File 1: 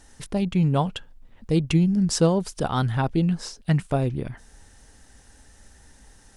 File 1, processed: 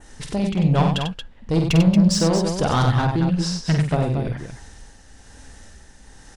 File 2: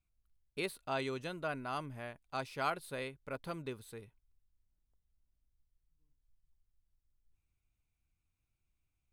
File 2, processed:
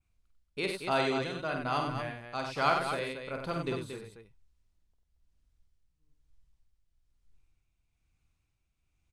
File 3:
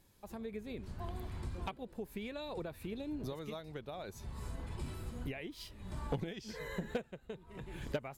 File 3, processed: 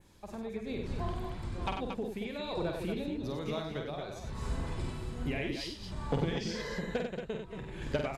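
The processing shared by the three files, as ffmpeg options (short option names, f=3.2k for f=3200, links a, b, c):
-af "lowpass=8k,adynamicequalizer=threshold=0.00178:dfrequency=4800:dqfactor=1.5:tfrequency=4800:tqfactor=1.5:attack=5:release=100:ratio=0.375:range=1.5:mode=boostabove:tftype=bell,acontrast=77,tremolo=f=1.1:d=0.48,asoftclip=type=tanh:threshold=-14dB,aecho=1:1:49|95|229|235:0.531|0.501|0.422|0.112"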